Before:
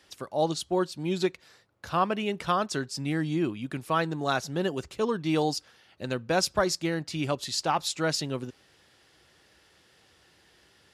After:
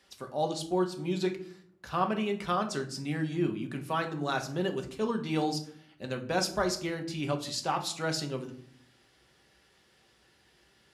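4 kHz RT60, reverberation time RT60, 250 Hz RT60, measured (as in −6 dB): 0.35 s, 0.60 s, 0.90 s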